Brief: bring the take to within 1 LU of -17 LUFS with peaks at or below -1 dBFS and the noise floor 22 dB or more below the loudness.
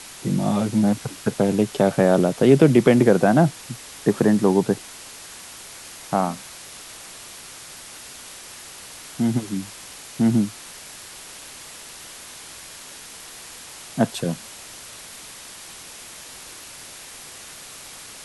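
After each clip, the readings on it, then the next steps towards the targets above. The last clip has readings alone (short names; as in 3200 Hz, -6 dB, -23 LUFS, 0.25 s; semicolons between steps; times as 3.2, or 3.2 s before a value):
noise floor -41 dBFS; noise floor target -42 dBFS; loudness -20.0 LUFS; peak -2.0 dBFS; loudness target -17.0 LUFS
-> noise print and reduce 6 dB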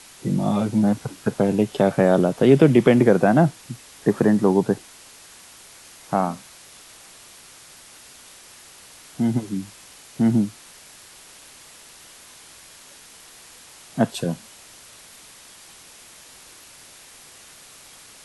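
noise floor -47 dBFS; loudness -20.0 LUFS; peak -2.0 dBFS; loudness target -17.0 LUFS
-> gain +3 dB; limiter -1 dBFS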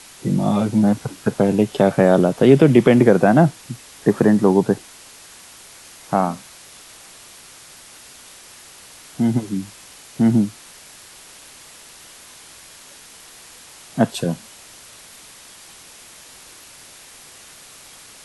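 loudness -17.5 LUFS; peak -1.0 dBFS; noise floor -44 dBFS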